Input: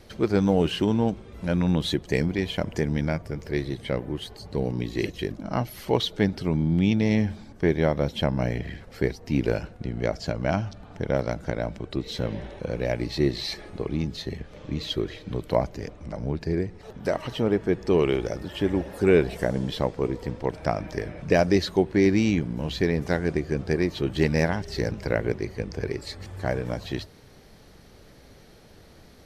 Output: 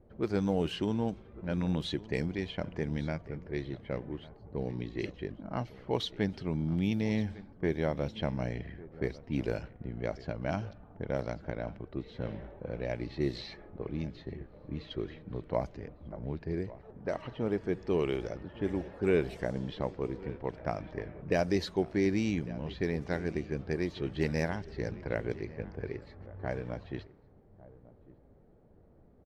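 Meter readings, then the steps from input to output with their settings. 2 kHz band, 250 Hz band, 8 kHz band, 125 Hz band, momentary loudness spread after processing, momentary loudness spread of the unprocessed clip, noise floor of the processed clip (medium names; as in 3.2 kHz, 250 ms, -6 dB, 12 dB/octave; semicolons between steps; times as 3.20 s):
-8.5 dB, -8.5 dB, under -10 dB, -8.5 dB, 11 LU, 11 LU, -59 dBFS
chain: on a send: delay 1151 ms -18.5 dB; on the sum: level-controlled noise filter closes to 650 Hz, open at -18.5 dBFS; trim -8.5 dB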